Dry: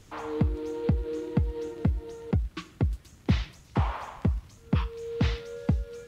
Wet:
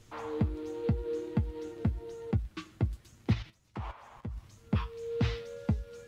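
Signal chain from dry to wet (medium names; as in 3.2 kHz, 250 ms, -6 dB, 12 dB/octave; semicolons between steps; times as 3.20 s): 3.33–4.38 s: level held to a coarse grid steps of 16 dB; flange 0.95 Hz, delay 8.4 ms, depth 1.1 ms, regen +50%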